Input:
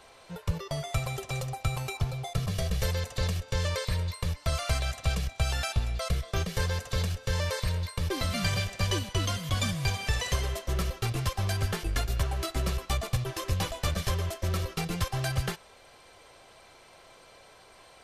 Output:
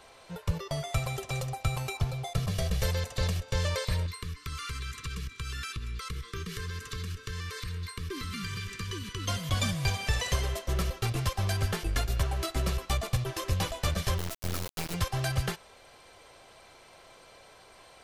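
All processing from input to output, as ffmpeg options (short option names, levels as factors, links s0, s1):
-filter_complex "[0:a]asettb=1/sr,asplit=3[s0][s1][s2];[s0]atrim=end=4.064[s3];[s1]atrim=start=4.06:end=9.28,asetpts=PTS-STARTPTS,afade=t=in:d=0.004:c=qsin,afade=t=out:st=5.216:d=0.004:c=qsin,equalizer=f=730:w=0.3:g=3.5,acompressor=threshold=0.0251:ratio=6:attack=3.2:release=140:knee=1:detection=peak,asuperstop=centerf=690:order=12:qfactor=1.2[s4];[s2]atrim=start=9.276[s5];[s3][s4]acrossfade=d=0.004:c1=hsin:c2=qsin[s6];[s6][s5]acrossfade=d=0.004:c1=qsin:c2=hsin,asettb=1/sr,asplit=3[s7][s8][s9];[s7]atrim=end=14.184[s10];[s8]atrim=start=14.18:end=14.94,asetpts=PTS-STARTPTS,afade=t=in:d=0.004:c=qsin,afade=t=out:st=0.756:d=0.004:c=qsin,highshelf=f=7400:g=6,tremolo=f=120:d=0.261,acrusher=bits=3:dc=4:mix=0:aa=0.000001[s11];[s9]atrim=start=14.936[s12];[s10][s11]acrossfade=d=0.004:c1=hsin:c2=qsin[s13];[s13][s12]acrossfade=d=0.004:c1=qsin:c2=hsin"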